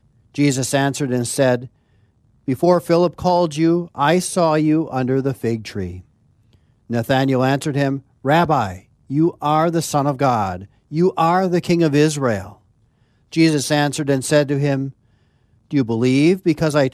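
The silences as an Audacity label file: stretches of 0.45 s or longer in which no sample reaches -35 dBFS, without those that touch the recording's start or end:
1.670000	2.480000	silence
6.000000	6.900000	silence
12.530000	13.320000	silence
14.900000	15.710000	silence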